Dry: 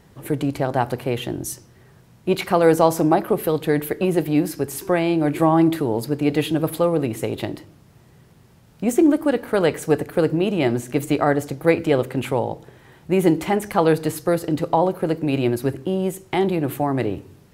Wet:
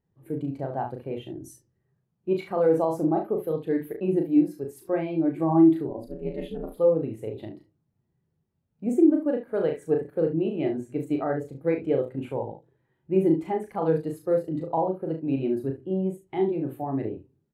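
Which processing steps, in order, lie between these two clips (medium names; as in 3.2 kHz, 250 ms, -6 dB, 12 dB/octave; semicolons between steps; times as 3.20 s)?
5.88–6.77 s: ring modulator 120 Hz; hum notches 60/120/180 Hz; on a send: early reflections 37 ms -4 dB, 70 ms -8.5 dB; on the sum: loudness maximiser +5 dB; spectral contrast expander 1.5:1; trim -8 dB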